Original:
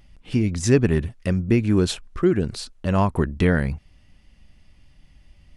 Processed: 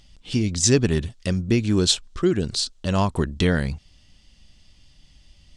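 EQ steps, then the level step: band shelf 5100 Hz +11.5 dB; -1.5 dB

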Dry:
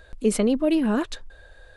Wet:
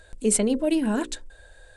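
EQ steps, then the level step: Butterworth band-stop 1200 Hz, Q 7.3; bell 8300 Hz +13 dB 0.7 oct; notches 60/120/180/240/300/360/420/480/540 Hz; -1.5 dB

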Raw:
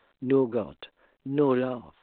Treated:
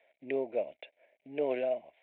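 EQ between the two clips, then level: double band-pass 1200 Hz, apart 1.8 oct; +6.5 dB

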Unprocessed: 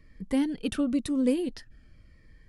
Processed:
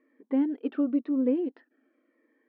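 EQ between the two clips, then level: brick-wall FIR high-pass 240 Hz; air absorption 340 m; tape spacing loss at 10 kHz 43 dB; +3.0 dB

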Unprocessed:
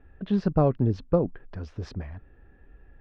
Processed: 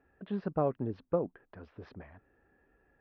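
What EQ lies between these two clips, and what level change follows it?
HPF 460 Hz 6 dB/oct; air absorption 290 m; high shelf 5000 Hz -6 dB; -3.0 dB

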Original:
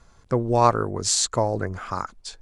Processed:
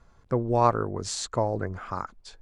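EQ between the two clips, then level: high shelf 3700 Hz -11 dB; -3.0 dB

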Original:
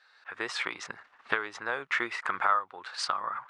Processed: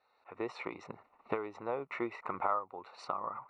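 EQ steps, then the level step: running mean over 27 samples; +3.0 dB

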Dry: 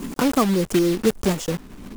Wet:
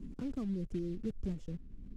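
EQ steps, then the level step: air absorption 58 m; passive tone stack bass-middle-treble 10-0-1; high shelf 2100 Hz -11 dB; +1.0 dB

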